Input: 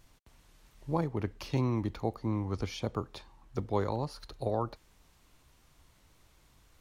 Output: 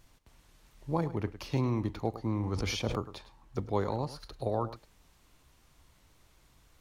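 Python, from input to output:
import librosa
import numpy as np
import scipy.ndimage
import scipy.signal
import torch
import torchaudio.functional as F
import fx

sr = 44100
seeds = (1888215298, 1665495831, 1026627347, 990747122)

p1 = x + fx.echo_single(x, sr, ms=105, db=-14.5, dry=0)
y = fx.sustainer(p1, sr, db_per_s=39.0, at=(2.42, 2.96), fade=0.02)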